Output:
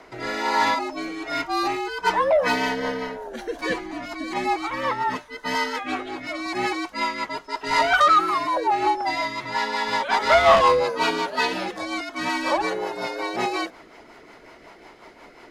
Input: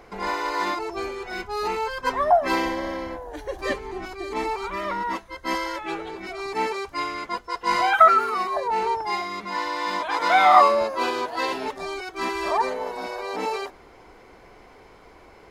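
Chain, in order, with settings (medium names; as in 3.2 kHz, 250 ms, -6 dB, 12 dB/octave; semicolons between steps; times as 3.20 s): overdrive pedal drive 16 dB, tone 8 kHz, clips at -2 dBFS; frequency shift -72 Hz; rotary cabinet horn 1.2 Hz, later 5.5 Hz, at 1.84 s; trim -2.5 dB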